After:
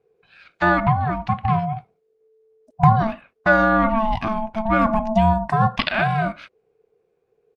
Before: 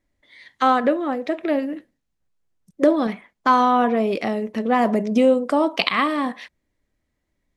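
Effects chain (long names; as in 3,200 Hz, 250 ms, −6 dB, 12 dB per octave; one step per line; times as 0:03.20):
low-pass filter 2,300 Hz 6 dB per octave
low-shelf EQ 150 Hz +9.5 dB
comb filter 2.9 ms, depth 38%
ring modulation 440 Hz
parametric band 380 Hz −2.5 dB 1.6 octaves
level +3 dB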